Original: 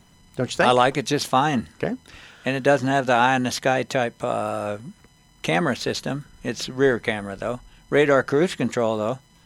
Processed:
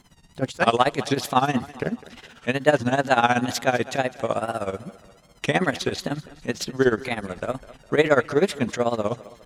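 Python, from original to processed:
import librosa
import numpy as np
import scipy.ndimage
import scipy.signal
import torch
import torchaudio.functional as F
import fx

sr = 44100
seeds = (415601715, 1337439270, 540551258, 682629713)

y = fx.wow_flutter(x, sr, seeds[0], rate_hz=2.1, depth_cents=130.0)
y = y * (1.0 - 0.83 / 2.0 + 0.83 / 2.0 * np.cos(2.0 * np.pi * 16.0 * (np.arange(len(y)) / sr)))
y = fx.echo_thinned(y, sr, ms=204, feedback_pct=46, hz=190.0, wet_db=-18)
y = fx.upward_expand(y, sr, threshold_db=-27.0, expansion=1.5, at=(0.49, 0.95), fade=0.02)
y = y * 10.0 ** (2.5 / 20.0)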